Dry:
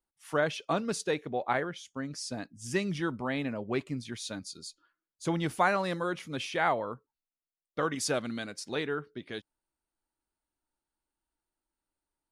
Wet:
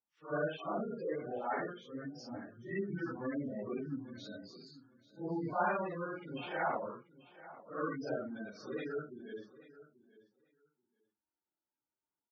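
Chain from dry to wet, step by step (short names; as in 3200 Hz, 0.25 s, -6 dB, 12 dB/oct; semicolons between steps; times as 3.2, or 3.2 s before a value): phase scrambler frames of 0.2 s; HPF 120 Hz 12 dB/oct; air absorption 140 m; spectral gate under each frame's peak -15 dB strong; feedback echo 0.836 s, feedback 15%, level -18 dB; gain -5 dB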